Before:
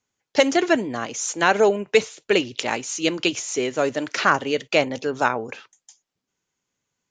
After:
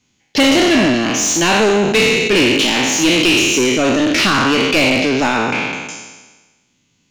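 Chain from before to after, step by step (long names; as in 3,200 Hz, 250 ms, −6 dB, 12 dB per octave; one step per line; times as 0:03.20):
peak hold with a decay on every bin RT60 1.24 s
spectral tilt −3 dB per octave
in parallel at −2.5 dB: downward compressor, threshold −25 dBFS, peak gain reduction 16.5 dB
on the sum: flat-topped bell 850 Hz −13 dB 2.5 octaves
mid-hump overdrive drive 24 dB, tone 6,100 Hz, clips at −4.5 dBFS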